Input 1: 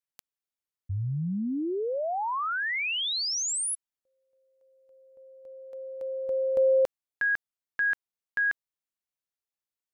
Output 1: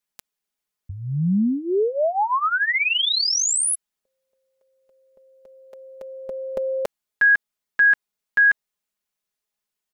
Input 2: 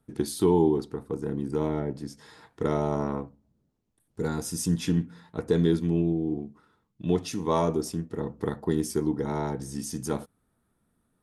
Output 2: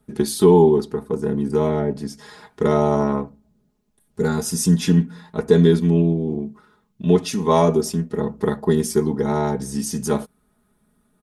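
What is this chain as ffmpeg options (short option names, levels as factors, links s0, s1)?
-af "aecho=1:1:4.8:0.73,volume=2.11"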